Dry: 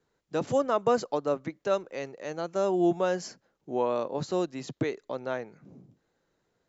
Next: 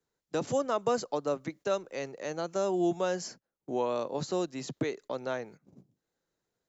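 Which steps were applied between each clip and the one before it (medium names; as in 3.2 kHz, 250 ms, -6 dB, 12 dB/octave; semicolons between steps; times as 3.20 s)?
gate -48 dBFS, range -19 dB; tone controls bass 0 dB, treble +7 dB; three bands compressed up and down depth 40%; trim -3 dB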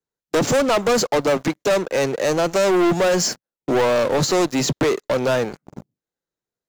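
waveshaping leveller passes 5; trim +3 dB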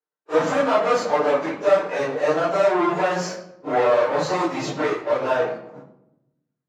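phase randomisation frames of 100 ms; band-pass filter 1 kHz, Q 0.82; on a send at -2 dB: reverberation RT60 0.90 s, pre-delay 7 ms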